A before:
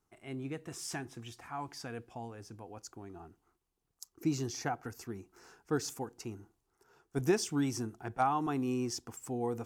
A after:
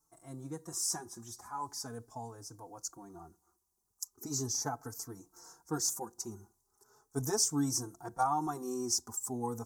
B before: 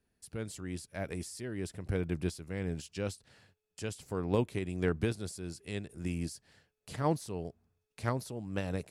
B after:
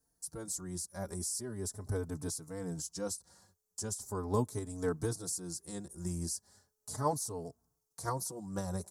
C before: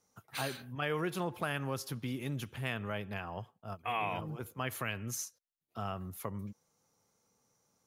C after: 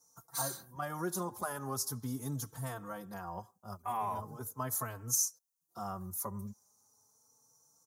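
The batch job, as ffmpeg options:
ffmpeg -i in.wav -filter_complex "[0:a]firequalizer=gain_entry='entry(590,0);entry(970,7);entry(2600,-20);entry(3800,-2);entry(5900,13)':delay=0.05:min_phase=1,asplit=2[link_01][link_02];[link_02]adelay=4,afreqshift=0.39[link_03];[link_01][link_03]amix=inputs=2:normalize=1" out.wav

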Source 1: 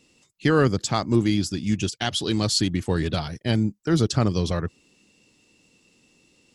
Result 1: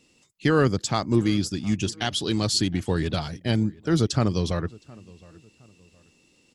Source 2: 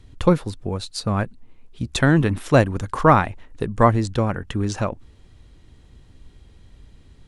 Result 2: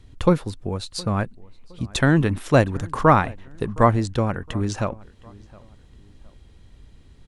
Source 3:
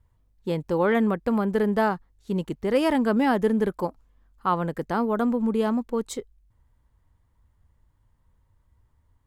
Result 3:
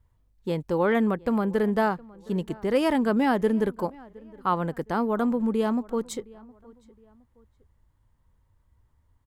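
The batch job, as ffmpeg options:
ffmpeg -i in.wav -filter_complex "[0:a]asplit=2[link_01][link_02];[link_02]adelay=715,lowpass=frequency=2600:poles=1,volume=-23dB,asplit=2[link_03][link_04];[link_04]adelay=715,lowpass=frequency=2600:poles=1,volume=0.36[link_05];[link_01][link_03][link_05]amix=inputs=3:normalize=0,volume=-1dB" out.wav

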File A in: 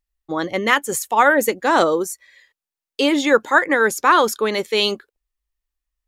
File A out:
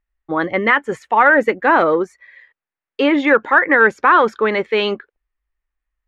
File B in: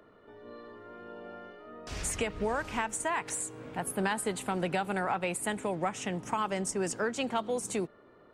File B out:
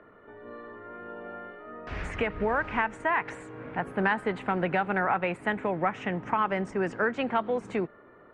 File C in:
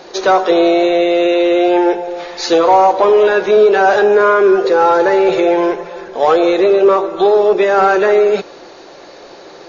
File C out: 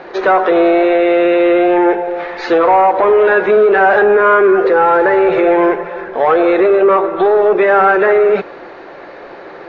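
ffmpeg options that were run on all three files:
ffmpeg -i in.wav -af "alimiter=limit=-6dB:level=0:latency=1:release=84,acontrast=26,lowpass=frequency=1900:width_type=q:width=1.6,volume=-2dB" out.wav

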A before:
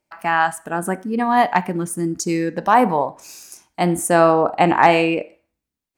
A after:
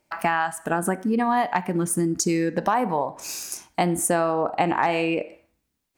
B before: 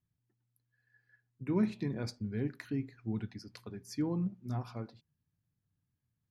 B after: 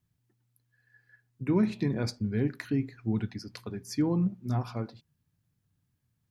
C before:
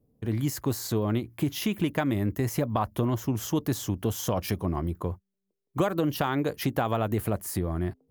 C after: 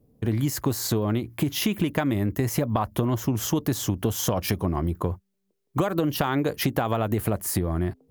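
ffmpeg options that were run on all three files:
ffmpeg -i in.wav -af "acompressor=threshold=-27dB:ratio=6,volume=7dB" out.wav

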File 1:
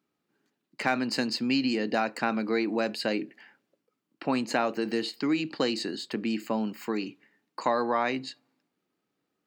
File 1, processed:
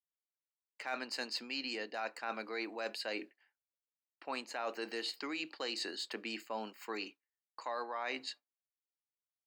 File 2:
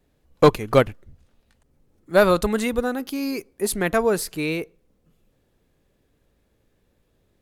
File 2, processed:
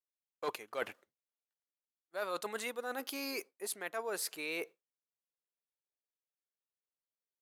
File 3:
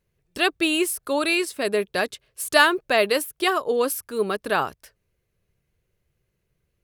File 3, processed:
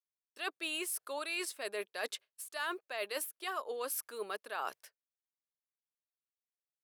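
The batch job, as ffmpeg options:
ffmpeg -i in.wav -af "highpass=580,agate=range=-33dB:threshold=-40dB:ratio=3:detection=peak,areverse,acompressor=threshold=-34dB:ratio=8,areverse,volume=-1.5dB" out.wav

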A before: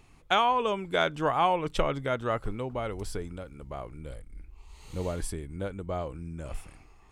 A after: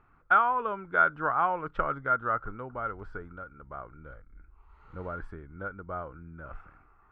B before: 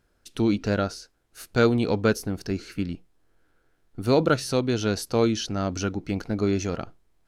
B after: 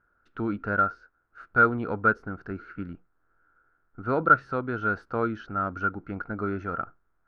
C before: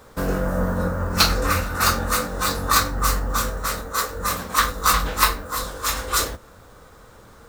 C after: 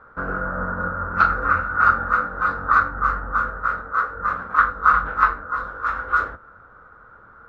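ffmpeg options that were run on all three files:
ffmpeg -i in.wav -af "lowpass=frequency=1400:width_type=q:width=8.5,volume=-7.5dB" out.wav

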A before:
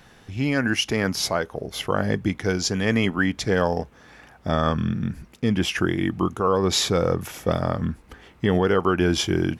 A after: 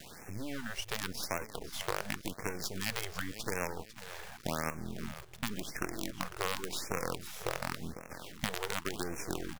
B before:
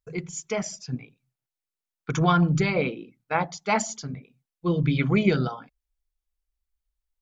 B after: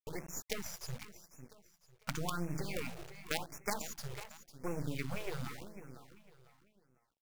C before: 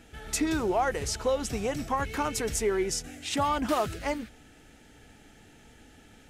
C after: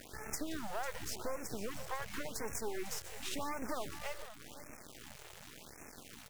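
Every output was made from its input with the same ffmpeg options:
ffmpeg -i in.wav -filter_complex "[0:a]highpass=frequency=110:poles=1,asplit=2[link_01][link_02];[link_02]alimiter=limit=-15dB:level=0:latency=1:release=424,volume=-2.5dB[link_03];[link_01][link_03]amix=inputs=2:normalize=0,acompressor=threshold=-40dB:ratio=2.5,acrusher=bits=5:dc=4:mix=0:aa=0.000001,asplit=2[link_04][link_05];[link_05]aecho=0:1:500|1000|1500:0.224|0.0739|0.0244[link_06];[link_04][link_06]amix=inputs=2:normalize=0,afftfilt=real='re*(1-between(b*sr/1024,220*pow(3900/220,0.5+0.5*sin(2*PI*0.9*pts/sr))/1.41,220*pow(3900/220,0.5+0.5*sin(2*PI*0.9*pts/sr))*1.41))':imag='im*(1-between(b*sr/1024,220*pow(3900/220,0.5+0.5*sin(2*PI*0.9*pts/sr))/1.41,220*pow(3900/220,0.5+0.5*sin(2*PI*0.9*pts/sr))*1.41))':win_size=1024:overlap=0.75" out.wav

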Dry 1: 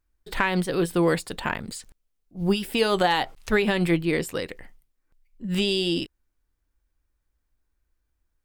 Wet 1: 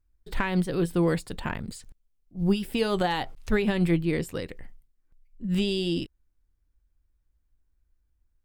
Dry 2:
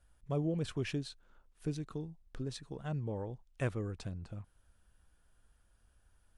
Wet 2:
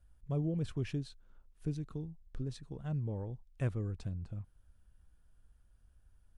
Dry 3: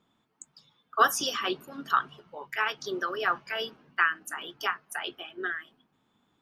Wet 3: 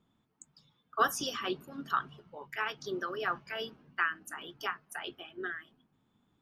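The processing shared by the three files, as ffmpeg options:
ffmpeg -i in.wav -af "lowshelf=frequency=240:gain=11.5,volume=-6.5dB" out.wav

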